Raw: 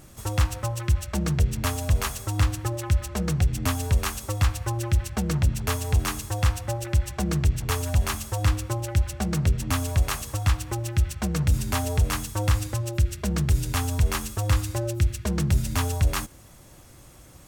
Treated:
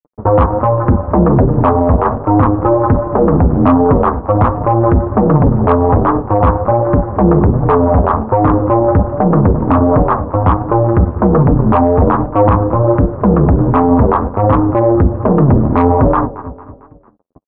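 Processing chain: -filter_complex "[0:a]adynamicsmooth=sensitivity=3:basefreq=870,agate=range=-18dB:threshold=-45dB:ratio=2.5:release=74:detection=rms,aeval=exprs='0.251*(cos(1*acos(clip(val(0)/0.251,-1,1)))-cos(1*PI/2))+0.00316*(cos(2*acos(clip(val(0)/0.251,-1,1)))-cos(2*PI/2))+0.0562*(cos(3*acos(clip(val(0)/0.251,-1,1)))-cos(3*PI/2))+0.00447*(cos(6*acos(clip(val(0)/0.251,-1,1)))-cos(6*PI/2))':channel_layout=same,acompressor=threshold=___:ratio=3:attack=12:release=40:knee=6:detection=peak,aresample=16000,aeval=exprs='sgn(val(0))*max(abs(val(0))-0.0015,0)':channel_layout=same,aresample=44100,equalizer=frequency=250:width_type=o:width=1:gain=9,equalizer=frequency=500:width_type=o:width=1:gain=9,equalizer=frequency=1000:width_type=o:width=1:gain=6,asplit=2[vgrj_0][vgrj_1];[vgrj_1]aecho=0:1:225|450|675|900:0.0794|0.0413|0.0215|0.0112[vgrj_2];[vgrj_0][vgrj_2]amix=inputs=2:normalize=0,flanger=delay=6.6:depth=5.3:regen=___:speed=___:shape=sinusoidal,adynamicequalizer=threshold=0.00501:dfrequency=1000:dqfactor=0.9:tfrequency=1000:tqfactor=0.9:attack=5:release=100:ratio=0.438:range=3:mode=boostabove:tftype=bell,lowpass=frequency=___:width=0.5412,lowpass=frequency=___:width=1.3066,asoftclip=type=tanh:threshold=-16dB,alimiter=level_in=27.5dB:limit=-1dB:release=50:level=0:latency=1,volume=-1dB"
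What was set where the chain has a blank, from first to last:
-23dB, -16, 1.3, 1300, 1300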